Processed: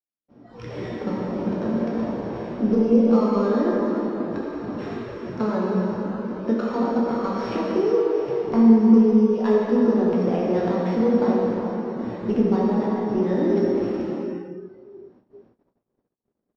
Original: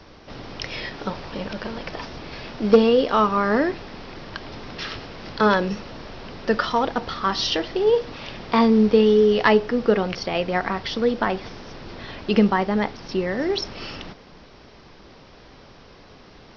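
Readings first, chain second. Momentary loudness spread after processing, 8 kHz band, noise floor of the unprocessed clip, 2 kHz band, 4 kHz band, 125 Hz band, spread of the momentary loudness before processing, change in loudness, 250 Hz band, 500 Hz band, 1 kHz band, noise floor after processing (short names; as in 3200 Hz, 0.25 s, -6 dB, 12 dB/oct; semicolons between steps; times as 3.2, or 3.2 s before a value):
14 LU, n/a, -48 dBFS, -11.0 dB, under -15 dB, +2.5 dB, 20 LU, -0.5 dB, +4.5 dB, -1.0 dB, -5.5 dB, -78 dBFS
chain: sample sorter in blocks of 8 samples; Chebyshev band-pass 250–5600 Hz, order 2; high shelf 3300 Hz -8.5 dB; compressor 5:1, threshold -24 dBFS, peak gain reduction 13.5 dB; plate-style reverb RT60 4.1 s, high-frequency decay 0.65×, DRR -5.5 dB; spectral noise reduction 16 dB; early reflections 17 ms -11.5 dB, 27 ms -15 dB; gate -55 dBFS, range -46 dB; tilt -4.5 dB/oct; gain -5 dB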